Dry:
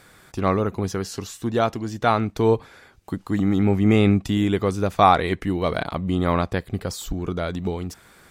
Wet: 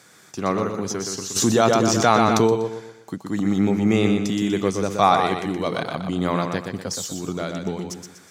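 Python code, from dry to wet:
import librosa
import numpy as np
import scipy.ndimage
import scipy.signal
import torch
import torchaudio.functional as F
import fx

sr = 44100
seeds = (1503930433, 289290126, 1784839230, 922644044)

y = scipy.signal.sosfilt(scipy.signal.butter(4, 120.0, 'highpass', fs=sr, output='sos'), x)
y = fx.peak_eq(y, sr, hz=6200.0, db=11.0, octaves=0.71)
y = fx.echo_feedback(y, sr, ms=122, feedback_pct=38, wet_db=-5.5)
y = fx.env_flatten(y, sr, amount_pct=70, at=(1.35, 2.46), fade=0.02)
y = F.gain(torch.from_numpy(y), -2.0).numpy()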